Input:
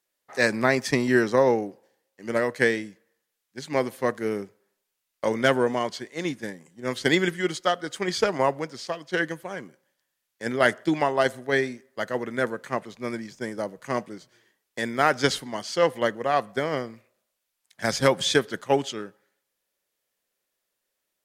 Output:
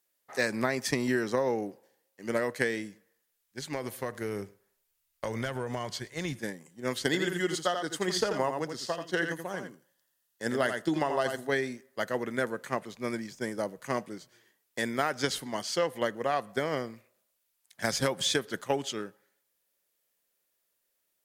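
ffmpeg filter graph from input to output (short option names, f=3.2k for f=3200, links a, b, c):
-filter_complex "[0:a]asettb=1/sr,asplit=3[a][b][c];[a]atrim=end=2.834[d];[b]atrim=start=2.83:end=6.39,asetpts=PTS-STARTPTS,afade=t=in:d=0.004:c=qsin,afade=t=out:st=3.556:d=0.004:c=qsin,asubboost=boost=10.5:cutoff=93,acompressor=threshold=-26dB:ratio=10:attack=3.2:release=140:knee=1:detection=peak,aecho=1:1:107:0.0708,atrim=end_sample=156996[e];[c]atrim=start=6.386[f];[d][e]acrossfade=d=0.004:c1=hsin:c2=qsin[g];[g][f]acrossfade=d=0.004:c1=qsin:c2=hsin,asettb=1/sr,asplit=3[h][i][j];[h]atrim=end=7.044[k];[i]atrim=start=7.04:end=11.51,asetpts=PTS-STARTPTS,afade=t=in:d=0.004:c=qsin,afade=t=out:st=4.466:d=0.004:c=qsin,bandreject=f=2.3k:w=6,aecho=1:1:84:0.422,atrim=end_sample=197127[l];[j]atrim=start=11.506[m];[k][l]acrossfade=d=0.004:c1=hsin:c2=qsin[n];[n][m]acrossfade=d=0.004:c1=qsin:c2=hsin,highshelf=f=10k:g=9.5,acompressor=threshold=-22dB:ratio=6,volume=-2dB"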